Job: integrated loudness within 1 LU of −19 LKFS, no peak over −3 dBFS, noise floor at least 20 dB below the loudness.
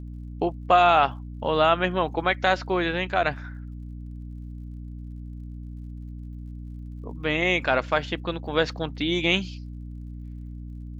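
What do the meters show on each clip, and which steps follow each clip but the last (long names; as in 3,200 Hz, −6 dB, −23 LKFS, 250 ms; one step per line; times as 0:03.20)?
crackle rate 47 per second; mains hum 60 Hz; hum harmonics up to 300 Hz; level of the hum −34 dBFS; integrated loudness −23.5 LKFS; sample peak −6.0 dBFS; target loudness −19.0 LKFS
→ click removal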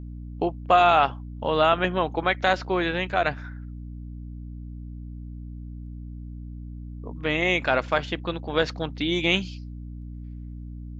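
crackle rate 0.36 per second; mains hum 60 Hz; hum harmonics up to 300 Hz; level of the hum −35 dBFS
→ mains-hum notches 60/120/180/240/300 Hz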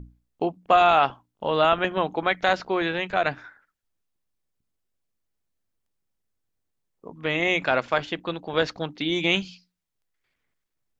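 mains hum none found; integrated loudness −24.0 LKFS; sample peak −6.0 dBFS; target loudness −19.0 LKFS
→ level +5 dB
brickwall limiter −3 dBFS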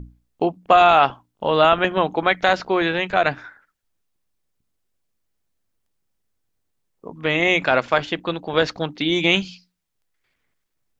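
integrated loudness −19.0 LKFS; sample peak −3.0 dBFS; background noise floor −74 dBFS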